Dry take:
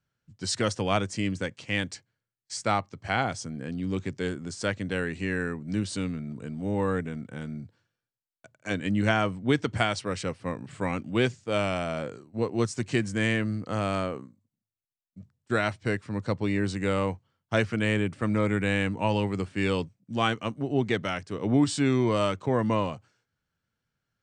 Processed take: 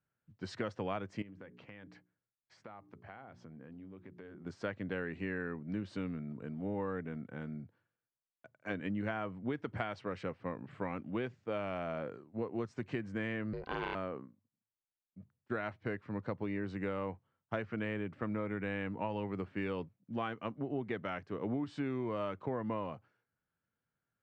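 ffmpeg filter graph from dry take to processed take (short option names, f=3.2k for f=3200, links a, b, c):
-filter_complex "[0:a]asettb=1/sr,asplit=3[a][b][c];[a]atrim=end=1.224[d];[b]atrim=start=1.22:end=4.46,asetpts=PTS-STARTPTS,afade=t=in:d=0.004:c=qsin,afade=t=out:st=3.236:d=0.004:c=qsin,lowpass=f=2.5k:p=1,bandreject=f=60:t=h:w=6,bandreject=f=120:t=h:w=6,bandreject=f=180:t=h:w=6,bandreject=f=240:t=h:w=6,bandreject=f=300:t=h:w=6,bandreject=f=360:t=h:w=6,bandreject=f=420:t=h:w=6,acompressor=threshold=-41dB:ratio=10:attack=3.2:release=140:knee=1:detection=peak[e];[c]atrim=start=4.456[f];[d][e]acrossfade=d=0.004:c1=hsin:c2=qsin[g];[g][f]acrossfade=d=0.004:c1=qsin:c2=hsin,asettb=1/sr,asplit=3[h][i][j];[h]atrim=end=13.534[k];[i]atrim=start=13.53:end=13.95,asetpts=PTS-STARTPTS,afade=t=in:d=0.004:c=qsin,afade=t=out:st=0.416:d=0.004:c=qsin,lowpass=7.2k,equalizer=f=3.5k:t=o:w=2.3:g=14.5,aeval=exprs='val(0)*sin(2*PI*260*n/s)':c=same[l];[j]atrim=start=13.946[m];[k][l]acrossfade=d=0.004:c1=hsin:c2=qsin[n];[n][m]acrossfade=d=0.004:c1=qsin:c2=hsin,lowpass=2k,lowshelf=f=110:g=-9.5,acompressor=threshold=-29dB:ratio=6,volume=-4dB"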